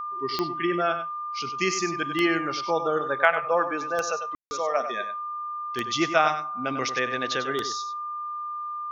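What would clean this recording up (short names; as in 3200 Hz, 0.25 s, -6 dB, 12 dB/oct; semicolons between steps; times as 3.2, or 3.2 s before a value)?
de-click; notch 1200 Hz, Q 30; room tone fill 4.35–4.51; inverse comb 97 ms -10 dB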